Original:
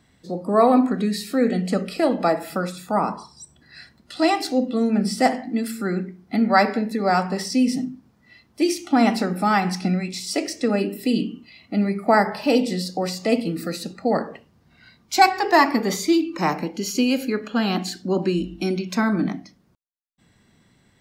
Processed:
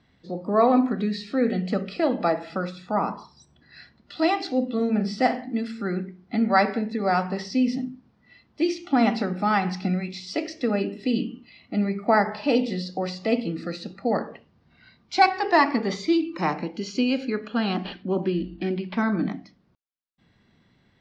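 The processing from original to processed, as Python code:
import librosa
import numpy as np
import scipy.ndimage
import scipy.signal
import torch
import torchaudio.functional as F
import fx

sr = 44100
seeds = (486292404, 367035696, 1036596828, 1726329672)

y = fx.doubler(x, sr, ms=42.0, db=-10.0, at=(4.75, 5.45))
y = fx.resample_linear(y, sr, factor=6, at=(17.73, 19.02))
y = scipy.signal.sosfilt(scipy.signal.butter(4, 4900.0, 'lowpass', fs=sr, output='sos'), y)
y = y * 10.0 ** (-3.0 / 20.0)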